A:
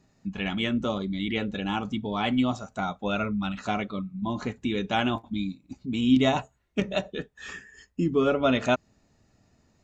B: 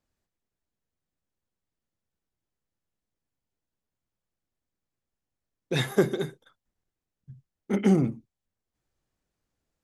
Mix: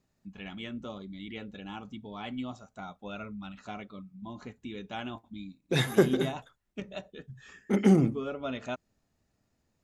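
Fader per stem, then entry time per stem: −12.5, 0.0 decibels; 0.00, 0.00 seconds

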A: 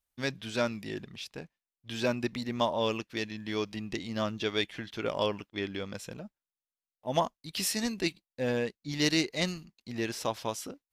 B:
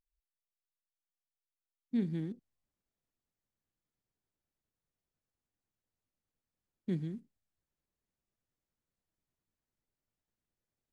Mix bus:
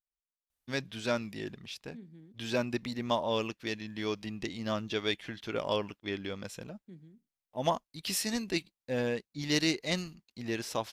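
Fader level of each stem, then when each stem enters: −1.5, −16.5 decibels; 0.50, 0.00 seconds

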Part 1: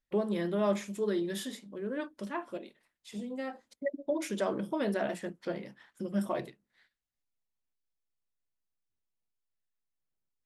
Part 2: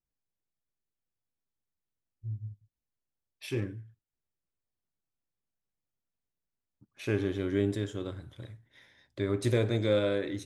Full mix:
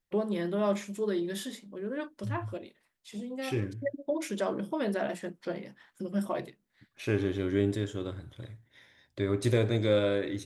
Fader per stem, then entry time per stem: +0.5, +1.0 decibels; 0.00, 0.00 seconds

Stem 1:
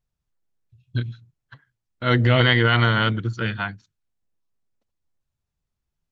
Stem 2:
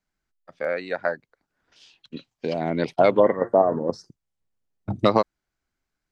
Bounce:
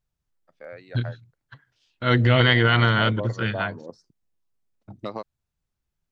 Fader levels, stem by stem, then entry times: −0.5, −14.5 decibels; 0.00, 0.00 seconds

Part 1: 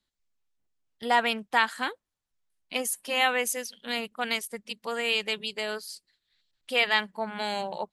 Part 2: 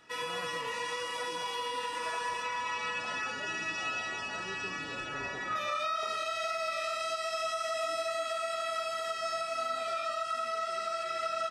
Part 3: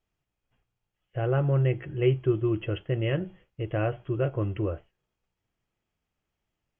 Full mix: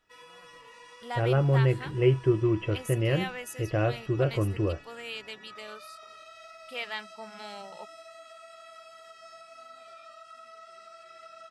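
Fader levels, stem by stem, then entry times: −12.0, −15.0, +1.0 decibels; 0.00, 0.00, 0.00 seconds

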